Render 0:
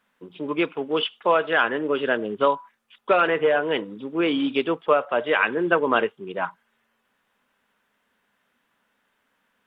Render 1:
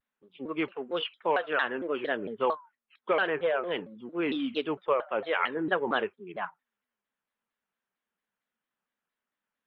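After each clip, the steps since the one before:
noise reduction from a noise print of the clip's start 12 dB
pitch modulation by a square or saw wave saw down 4.4 Hz, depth 250 cents
level −7.5 dB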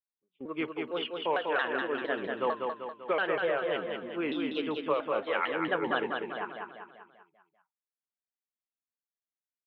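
noise gate −46 dBFS, range −20 dB
on a send: repeating echo 195 ms, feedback 50%, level −4 dB
on the sum: level −3 dB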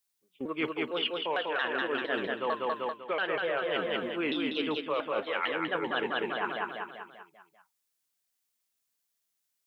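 high-shelf EQ 2,800 Hz +10 dB
reversed playback
downward compressor, threshold −35 dBFS, peak gain reduction 12.5 dB
reversed playback
level +7 dB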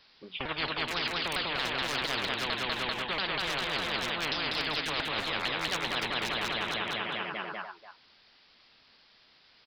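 downsampling to 11,025 Hz
far-end echo of a speakerphone 290 ms, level −17 dB
every bin compressed towards the loudest bin 10 to 1

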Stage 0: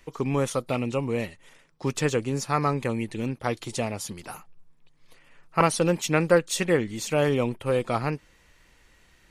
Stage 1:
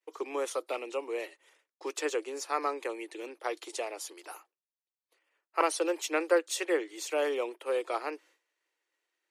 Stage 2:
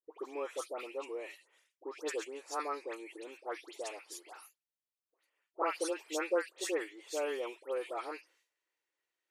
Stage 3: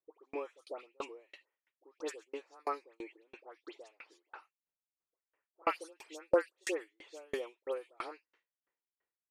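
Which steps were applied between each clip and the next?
Butterworth high-pass 310 Hz 72 dB per octave; downward expander −50 dBFS; level −5.5 dB
all-pass dispersion highs, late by 116 ms, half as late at 1,700 Hz; level −6 dB
low-pass that shuts in the quiet parts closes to 1,600 Hz, open at −33 dBFS; tremolo with a ramp in dB decaying 3 Hz, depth 39 dB; level +6.5 dB

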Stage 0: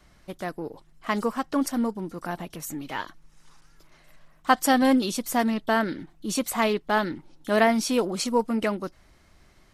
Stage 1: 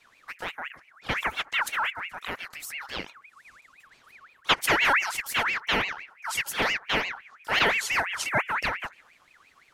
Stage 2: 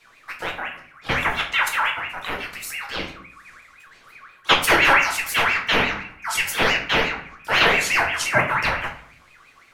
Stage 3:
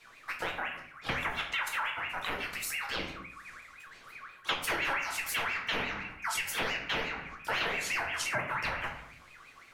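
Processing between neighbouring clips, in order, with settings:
delay with a low-pass on its return 72 ms, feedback 64%, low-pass 550 Hz, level −22.5 dB; ring modulator whose carrier an LFO sweeps 1,800 Hz, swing 40%, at 5.8 Hz
convolution reverb RT60 0.55 s, pre-delay 6 ms, DRR 0.5 dB; level +4 dB
downward compressor 4 to 1, threshold −29 dBFS, peak gain reduction 15.5 dB; level −2.5 dB

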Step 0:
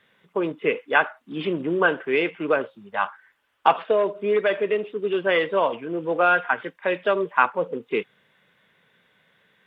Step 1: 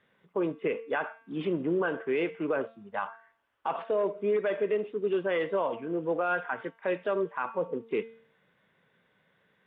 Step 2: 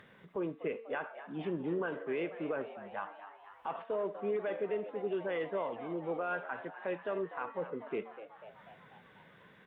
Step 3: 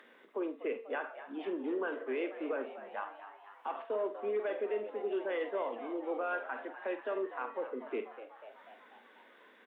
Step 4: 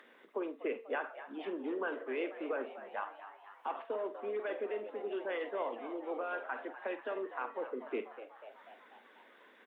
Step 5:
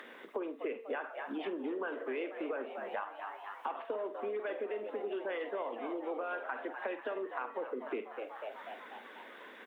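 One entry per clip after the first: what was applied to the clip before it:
high-shelf EQ 2,200 Hz −11 dB; hum removal 226.7 Hz, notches 31; brickwall limiter −17 dBFS, peak gain reduction 11 dB; level −3 dB
upward compression, threshold −38 dBFS; bass and treble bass +3 dB, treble −4 dB; on a send: echo with shifted repeats 246 ms, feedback 64%, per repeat +100 Hz, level −13 dB; on the sum: level −7.5 dB
Butterworth high-pass 230 Hz 72 dB per octave; double-tracking delay 47 ms −11 dB
harmonic and percussive parts rebalanced harmonic −6 dB; level +2 dB
downward compressor 4 to 1, threshold −46 dBFS, peak gain reduction 12.5 dB; level +9.5 dB

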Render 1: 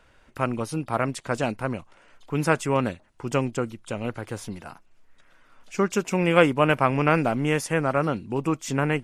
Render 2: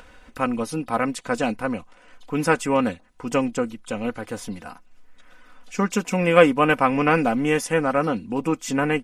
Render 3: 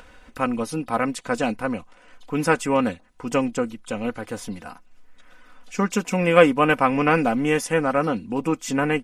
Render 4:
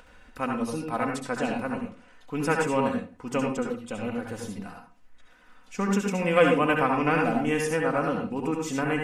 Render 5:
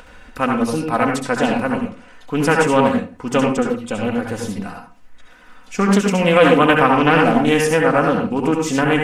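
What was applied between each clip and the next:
comb filter 4 ms, depth 63%; upward compression, threshold −41 dBFS; level +1 dB
no processing that can be heard
convolution reverb RT60 0.40 s, pre-delay 65 ms, DRR 1 dB; level −6.5 dB
boost into a limiter +11.5 dB; highs frequency-modulated by the lows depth 0.26 ms; level −1 dB

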